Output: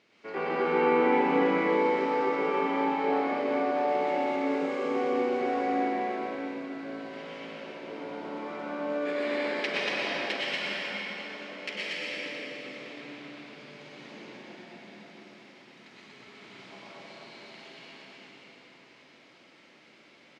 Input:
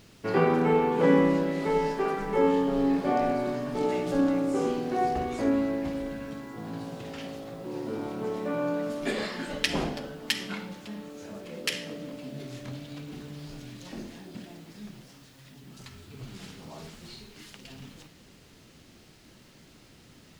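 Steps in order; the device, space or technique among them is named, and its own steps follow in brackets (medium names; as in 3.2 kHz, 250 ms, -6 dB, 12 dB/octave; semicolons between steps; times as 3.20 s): station announcement (band-pass 350–3900 Hz; peaking EQ 2.2 kHz +8 dB 0.25 oct; loudspeakers at several distances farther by 42 m -6 dB, 81 m -4 dB; reverberation RT60 4.3 s, pre-delay 94 ms, DRR -7 dB); trim -8.5 dB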